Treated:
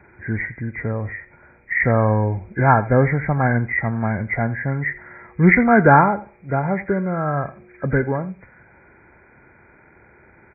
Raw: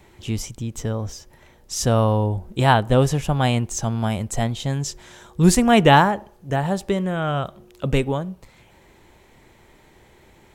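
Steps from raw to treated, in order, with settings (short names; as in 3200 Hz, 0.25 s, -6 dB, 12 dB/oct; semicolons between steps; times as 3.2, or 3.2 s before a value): nonlinear frequency compression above 1300 Hz 4:1; HPF 58 Hz; echo 83 ms -17.5 dB; gain +1 dB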